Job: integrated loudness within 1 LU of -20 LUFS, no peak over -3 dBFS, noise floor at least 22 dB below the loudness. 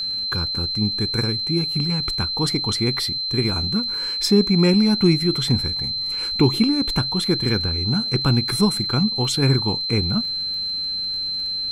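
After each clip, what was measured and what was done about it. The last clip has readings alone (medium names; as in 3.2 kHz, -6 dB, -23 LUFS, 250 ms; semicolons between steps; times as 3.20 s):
tick rate 24 per s; steady tone 4.1 kHz; tone level -23 dBFS; loudness -20.0 LUFS; peak level -5.0 dBFS; loudness target -20.0 LUFS
-> de-click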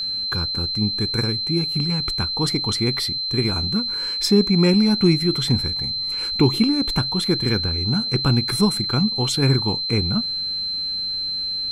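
tick rate 0.17 per s; steady tone 4.1 kHz; tone level -23 dBFS
-> band-stop 4.1 kHz, Q 30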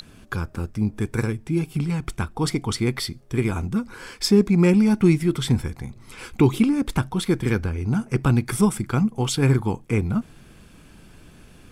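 steady tone not found; loudness -22.5 LUFS; peak level -6.0 dBFS; loudness target -20.0 LUFS
-> trim +2.5 dB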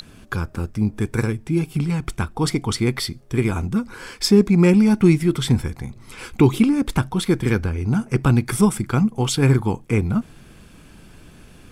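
loudness -20.0 LUFS; peak level -3.5 dBFS; noise floor -47 dBFS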